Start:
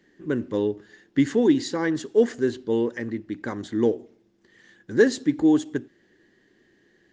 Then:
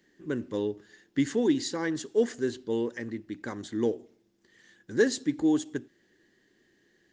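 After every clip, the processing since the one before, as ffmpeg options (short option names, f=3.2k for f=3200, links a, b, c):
-af "highshelf=f=4.2k:g=9,volume=-6dB"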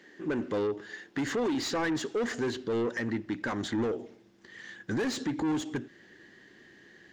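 -filter_complex "[0:a]asubboost=boost=3.5:cutoff=190,asplit=2[a][b];[b]highpass=f=720:p=1,volume=27dB,asoftclip=type=tanh:threshold=-12.5dB[c];[a][c]amix=inputs=2:normalize=0,lowpass=f=1.8k:p=1,volume=-6dB,alimiter=limit=-20dB:level=0:latency=1:release=192,volume=-4dB"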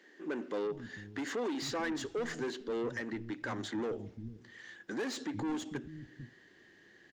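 -filter_complex "[0:a]acrossover=split=200[a][b];[a]adelay=450[c];[c][b]amix=inputs=2:normalize=0,volume=-5dB"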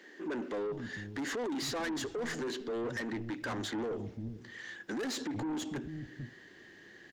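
-af "asoftclip=type=tanh:threshold=-38.5dB,volume=6dB"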